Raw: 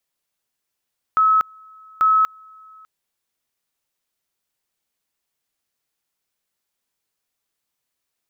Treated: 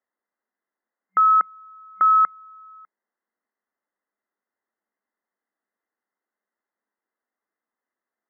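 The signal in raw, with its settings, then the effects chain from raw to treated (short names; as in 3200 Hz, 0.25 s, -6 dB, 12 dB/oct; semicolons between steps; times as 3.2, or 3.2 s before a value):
two-level tone 1290 Hz -12 dBFS, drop 30 dB, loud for 0.24 s, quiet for 0.60 s, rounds 2
FFT band-pass 190–2100 Hz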